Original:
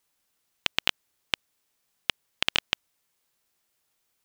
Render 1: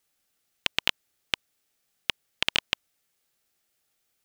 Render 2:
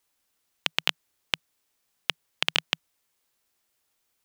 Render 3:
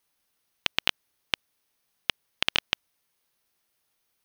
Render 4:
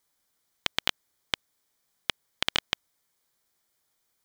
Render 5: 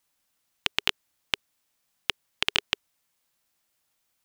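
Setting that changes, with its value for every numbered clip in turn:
notch filter, centre frequency: 1,000, 160, 7,400, 2,700, 410 Hertz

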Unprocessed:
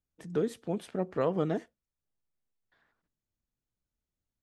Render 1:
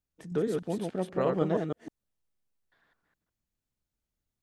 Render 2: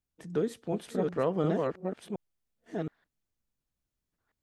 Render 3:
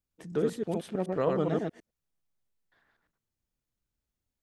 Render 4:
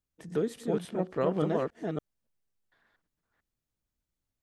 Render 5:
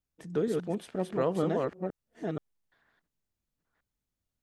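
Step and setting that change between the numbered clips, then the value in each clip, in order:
delay that plays each chunk backwards, delay time: 157, 720, 106, 284, 476 milliseconds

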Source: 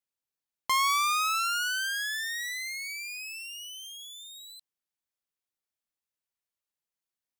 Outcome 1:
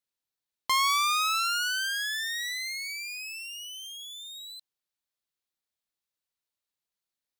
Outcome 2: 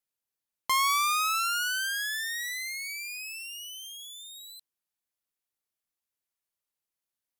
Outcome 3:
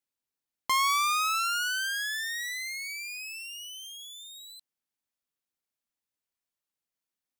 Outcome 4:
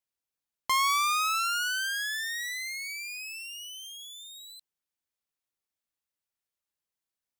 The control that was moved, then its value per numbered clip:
parametric band, centre frequency: 4,000, 12,000, 260, 62 Hertz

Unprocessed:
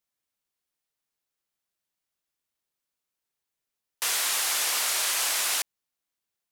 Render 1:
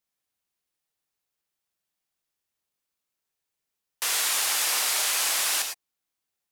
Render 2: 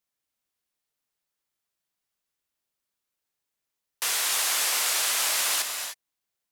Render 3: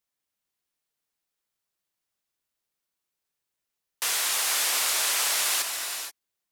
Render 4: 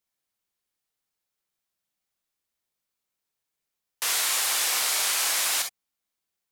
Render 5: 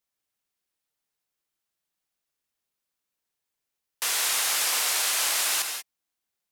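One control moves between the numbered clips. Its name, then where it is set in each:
reverb whose tail is shaped and stops, gate: 130, 330, 500, 80, 210 milliseconds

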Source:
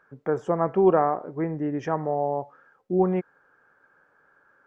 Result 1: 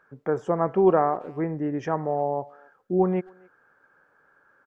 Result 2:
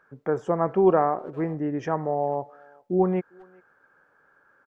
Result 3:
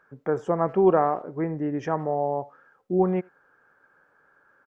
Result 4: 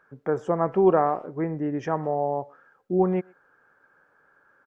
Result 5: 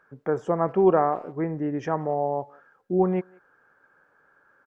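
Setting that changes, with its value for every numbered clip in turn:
far-end echo of a speakerphone, delay time: 270, 400, 80, 120, 180 milliseconds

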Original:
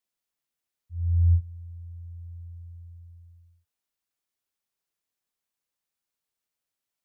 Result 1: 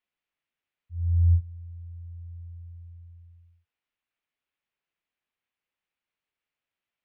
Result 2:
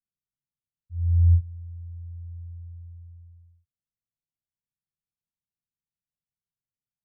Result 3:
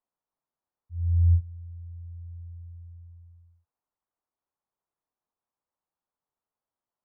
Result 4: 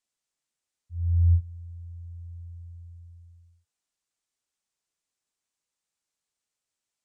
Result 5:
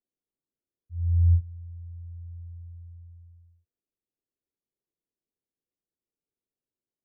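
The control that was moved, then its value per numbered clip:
low-pass with resonance, frequency: 2,600, 150, 990, 7,900, 390 Hertz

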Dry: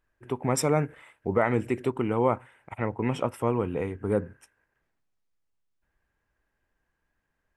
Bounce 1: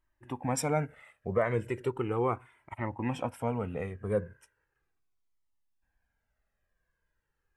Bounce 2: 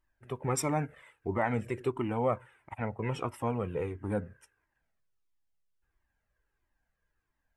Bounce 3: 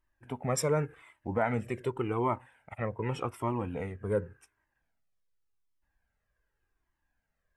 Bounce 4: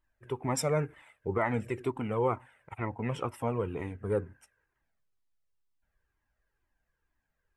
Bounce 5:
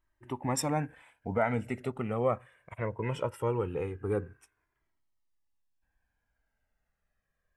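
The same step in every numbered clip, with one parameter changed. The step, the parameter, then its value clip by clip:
flanger whose copies keep moving one way, speed: 0.37, 1.5, 0.87, 2.1, 0.2 Hertz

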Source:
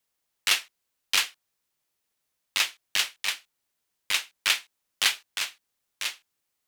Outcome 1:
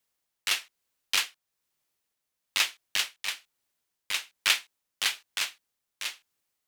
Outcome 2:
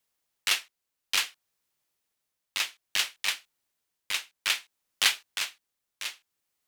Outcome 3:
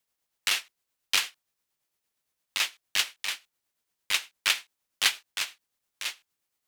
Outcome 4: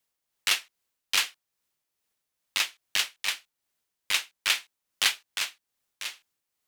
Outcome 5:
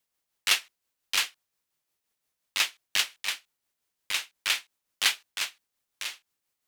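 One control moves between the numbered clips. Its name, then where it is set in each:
amplitude tremolo, speed: 1.1, 0.59, 8.7, 2.4, 5.7 Hertz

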